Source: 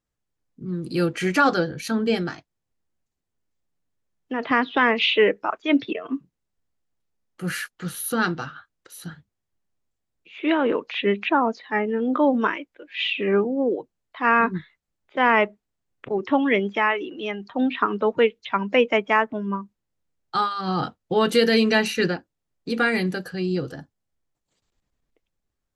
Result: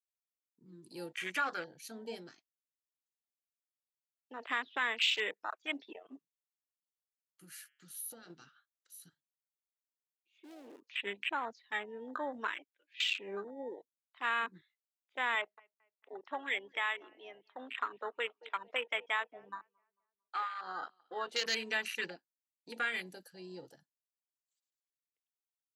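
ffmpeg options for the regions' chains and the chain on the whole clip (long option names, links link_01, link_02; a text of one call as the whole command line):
ffmpeg -i in.wav -filter_complex "[0:a]asettb=1/sr,asplit=3[link_01][link_02][link_03];[link_01]atrim=end=7.444[link_04];[link_02]atrim=start=7.44:end=8.3,asetpts=PTS-STARTPTS,afade=type=in:duration=0.004:curve=qsin,afade=type=out:start_time=0.856:duration=0.004:curve=qsin,bandreject=frequency=140:width_type=h:width=4,bandreject=frequency=280:width_type=h:width=4,bandreject=frequency=420:width_type=h:width=4,bandreject=frequency=560:width_type=h:width=4,bandreject=frequency=700:width_type=h:width=4,bandreject=frequency=840:width_type=h:width=4,bandreject=frequency=980:width_type=h:width=4,bandreject=frequency=1120:width_type=h:width=4,bandreject=frequency=1260:width_type=h:width=4,bandreject=frequency=1400:width_type=h:width=4,bandreject=frequency=1540:width_type=h:width=4,bandreject=frequency=1680:width_type=h:width=4,bandreject=frequency=1820:width_type=h:width=4,bandreject=frequency=1960:width_type=h:width=4,bandreject=frequency=2100:width_type=h:width=4,bandreject=frequency=2240:width_type=h:width=4,bandreject=frequency=2380:width_type=h:width=4,bandreject=frequency=2520:width_type=h:width=4,bandreject=frequency=2660:width_type=h:width=4,bandreject=frequency=2800:width_type=h:width=4,bandreject=frequency=2940:width_type=h:width=4,bandreject=frequency=3080:width_type=h:width=4,bandreject=frequency=3220:width_type=h:width=4,bandreject=frequency=3360:width_type=h:width=4,acompressor=threshold=-28dB:ratio=4:attack=3.2:release=140:knee=1:detection=peak[link_05];[link_03]atrim=start=8.296[link_06];[link_04][link_05]acrossfade=duration=0.004:curve1=hsin:curve2=qsin[link_07];[link_07][link_06]acrossfade=duration=0.004:curve1=qsin:curve2=hsin,asettb=1/sr,asplit=3[link_08][link_09][link_10];[link_08]atrim=end=9.094[link_11];[link_09]atrim=start=9.09:end=10.84,asetpts=PTS-STARTPTS,afade=type=in:duration=0.004:curve=qsin,afade=type=out:start_time=1.746:duration=0.004:curve=qsin,equalizer=frequency=2100:width=0.47:gain=-12,aecho=1:1:3.2:0.5,atrim=end_sample=77175,asoftclip=type=hard:threshold=-28.5dB[link_12];[link_10]atrim=start=10.836[link_13];[link_11][link_12]acrossfade=duration=0.004:curve1=hsin:curve2=qsin[link_14];[link_14][link_13]acrossfade=duration=0.004:curve1=qsin:curve2=hsin,asettb=1/sr,asplit=3[link_15][link_16][link_17];[link_15]atrim=end=15.354[link_18];[link_16]atrim=start=15.35:end=21.46,asetpts=PTS-STARTPTS,afade=type=in:duration=0.004:curve=qsin,afade=type=out:start_time=6.106:duration=0.004:curve=qsin,highpass=350,lowpass=4100,asplit=2[link_19][link_20];[link_20]adelay=224,lowpass=frequency=1900:poles=1,volume=-17dB,asplit=2[link_21][link_22];[link_22]adelay=224,lowpass=frequency=1900:poles=1,volume=0.46,asplit=2[link_23][link_24];[link_24]adelay=224,lowpass=frequency=1900:poles=1,volume=0.46,asplit=2[link_25][link_26];[link_26]adelay=224,lowpass=frequency=1900:poles=1,volume=0.46[link_27];[link_19][link_21][link_23][link_25][link_27]amix=inputs=5:normalize=0,atrim=end_sample=269451[link_28];[link_17]atrim=start=21.456[link_29];[link_18][link_28]acrossfade=duration=0.004:curve1=hsin:curve2=qsin[link_30];[link_30][link_29]acrossfade=duration=0.004:curve1=qsin:curve2=hsin,afwtdn=0.0447,aderivative,acompressor=threshold=-39dB:ratio=1.5,volume=4dB" out.wav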